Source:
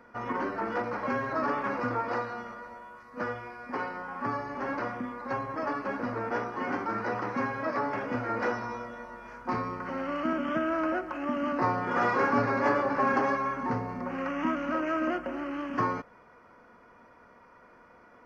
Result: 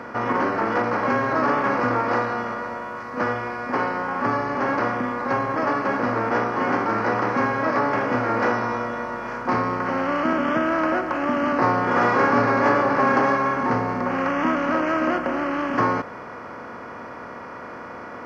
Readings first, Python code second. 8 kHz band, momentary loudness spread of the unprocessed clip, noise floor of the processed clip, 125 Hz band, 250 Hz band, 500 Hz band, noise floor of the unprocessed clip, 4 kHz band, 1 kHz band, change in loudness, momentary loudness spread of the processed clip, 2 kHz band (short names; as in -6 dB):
n/a, 11 LU, -37 dBFS, +8.5 dB, +8.0 dB, +8.5 dB, -56 dBFS, +9.5 dB, +9.0 dB, +8.5 dB, 16 LU, +9.0 dB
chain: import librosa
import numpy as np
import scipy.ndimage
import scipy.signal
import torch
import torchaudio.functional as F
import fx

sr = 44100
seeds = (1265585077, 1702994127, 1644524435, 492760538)

y = fx.bin_compress(x, sr, power=0.6)
y = scipy.signal.sosfilt(scipy.signal.butter(2, 43.0, 'highpass', fs=sr, output='sos'), y)
y = y * librosa.db_to_amplitude(4.5)